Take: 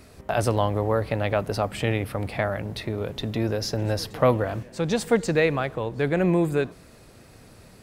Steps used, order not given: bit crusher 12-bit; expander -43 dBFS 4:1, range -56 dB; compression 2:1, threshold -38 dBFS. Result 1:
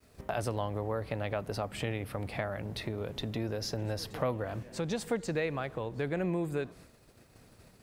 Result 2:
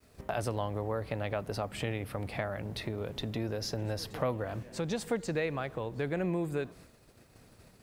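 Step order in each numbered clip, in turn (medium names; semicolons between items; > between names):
expander > bit crusher > compression; expander > compression > bit crusher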